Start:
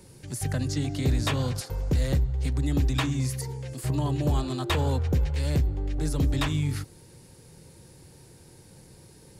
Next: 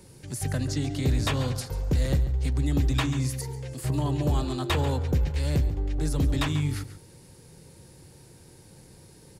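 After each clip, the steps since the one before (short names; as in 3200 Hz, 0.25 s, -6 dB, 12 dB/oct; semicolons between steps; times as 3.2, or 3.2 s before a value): outdoor echo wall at 24 m, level -13 dB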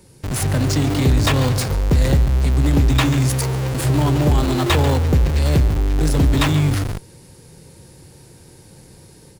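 AGC gain up to 4.5 dB; in parallel at -4 dB: Schmitt trigger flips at -34.5 dBFS; on the sum: gain +2 dB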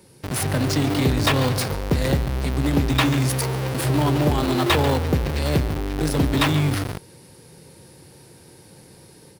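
HPF 170 Hz 6 dB/oct; bell 7100 Hz -6 dB 0.45 oct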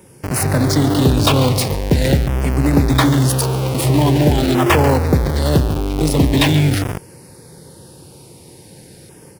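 LFO notch saw down 0.44 Hz 1000–4400 Hz; gain +6.5 dB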